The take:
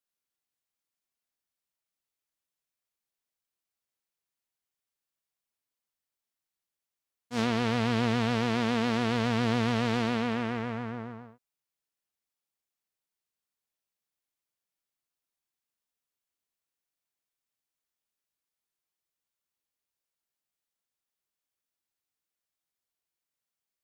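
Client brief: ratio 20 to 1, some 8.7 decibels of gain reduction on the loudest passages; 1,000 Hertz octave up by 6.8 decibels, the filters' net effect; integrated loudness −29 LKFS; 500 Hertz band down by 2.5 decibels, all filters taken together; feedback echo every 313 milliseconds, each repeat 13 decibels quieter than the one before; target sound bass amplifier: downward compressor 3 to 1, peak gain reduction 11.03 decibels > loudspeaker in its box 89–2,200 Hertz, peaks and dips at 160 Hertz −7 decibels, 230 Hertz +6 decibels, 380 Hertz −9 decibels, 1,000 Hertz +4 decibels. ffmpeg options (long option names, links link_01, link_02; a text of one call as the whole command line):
ffmpeg -i in.wav -af "equalizer=frequency=500:width_type=o:gain=-3,equalizer=frequency=1000:width_type=o:gain=7,acompressor=threshold=-31dB:ratio=20,aecho=1:1:313|626|939:0.224|0.0493|0.0108,acompressor=threshold=-45dB:ratio=3,highpass=frequency=89:width=0.5412,highpass=frequency=89:width=1.3066,equalizer=frequency=160:width_type=q:width=4:gain=-7,equalizer=frequency=230:width_type=q:width=4:gain=6,equalizer=frequency=380:width_type=q:width=4:gain=-9,equalizer=frequency=1000:width_type=q:width=4:gain=4,lowpass=frequency=2200:width=0.5412,lowpass=frequency=2200:width=1.3066,volume=15dB" out.wav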